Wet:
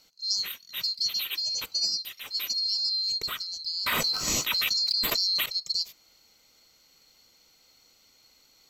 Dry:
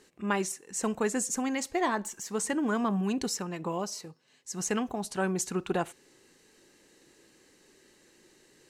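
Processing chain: band-swap scrambler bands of 4000 Hz; notch 1700 Hz, Q 6.8; 3.86–5.46 fast leveller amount 100%

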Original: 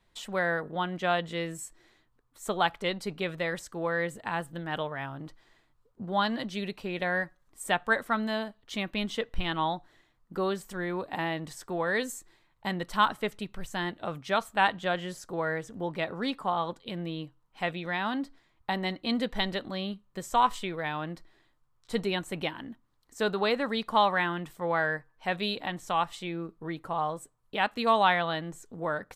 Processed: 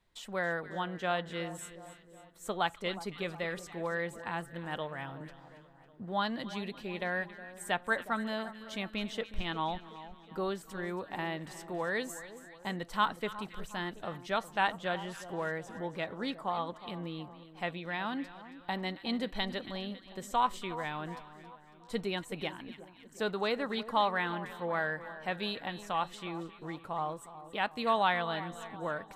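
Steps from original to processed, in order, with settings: split-band echo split 1200 Hz, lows 0.364 s, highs 0.275 s, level -14 dB; 3.11–3.7 whine 1200 Hz -54 dBFS; gain -5 dB

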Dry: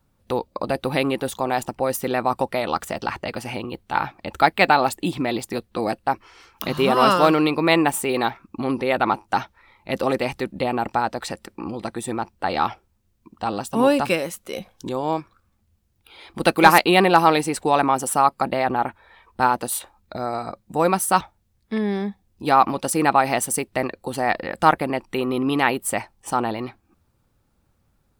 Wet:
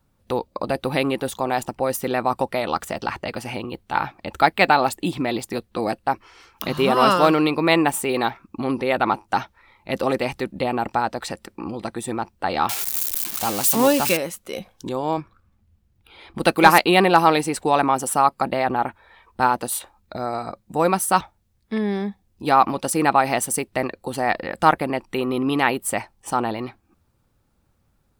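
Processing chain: 12.69–14.17 switching spikes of -13.5 dBFS; 15.17–16.39 tone controls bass +5 dB, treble -6 dB

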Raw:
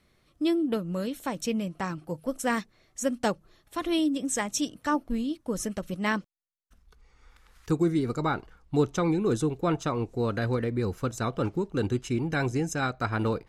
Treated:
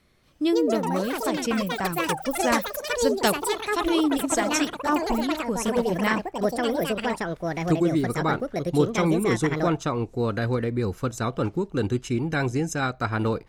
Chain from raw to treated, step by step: 3.2–3.81 bell 4600 Hz +9 dB 2.9 oct; echoes that change speed 0.235 s, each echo +6 st, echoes 3; gain +2.5 dB

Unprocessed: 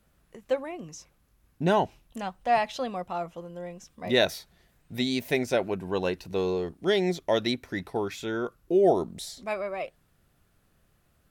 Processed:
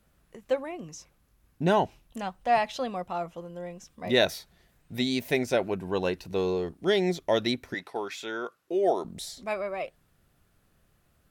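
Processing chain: 7.74–9.05 weighting filter A

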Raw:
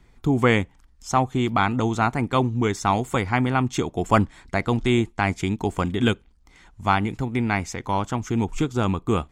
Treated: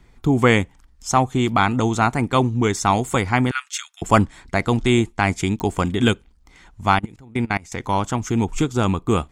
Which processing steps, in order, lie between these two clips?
3.51–4.02 elliptic high-pass 1400 Hz, stop band 70 dB; dynamic EQ 8700 Hz, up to +6 dB, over -48 dBFS, Q 0.77; 6.99–7.72 level quantiser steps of 23 dB; pops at 5.6, -18 dBFS; gain +3 dB

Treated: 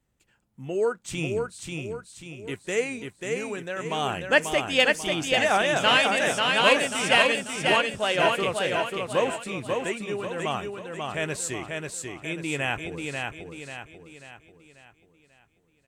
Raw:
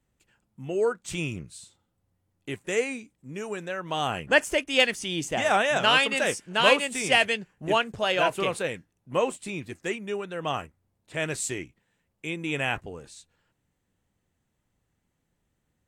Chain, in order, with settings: feedback echo 0.54 s, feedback 44%, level -4 dB

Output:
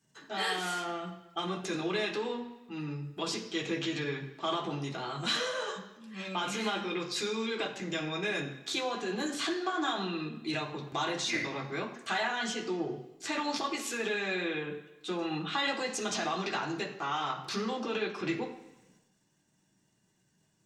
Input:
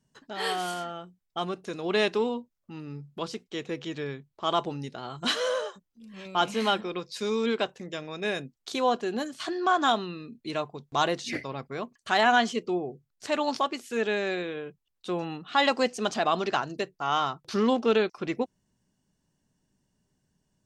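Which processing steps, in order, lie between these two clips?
transient shaper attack -2 dB, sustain +7 dB; compressor, threshold -32 dBFS, peak gain reduction 14 dB; reverb RT60 1.0 s, pre-delay 3 ms, DRR -2 dB

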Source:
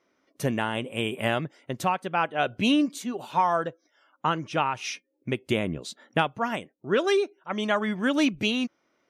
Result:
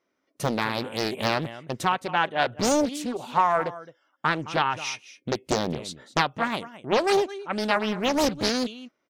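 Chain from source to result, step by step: gate -59 dBFS, range -8 dB; echo 0.215 s -16.5 dB; Doppler distortion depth 0.94 ms; gain +2 dB

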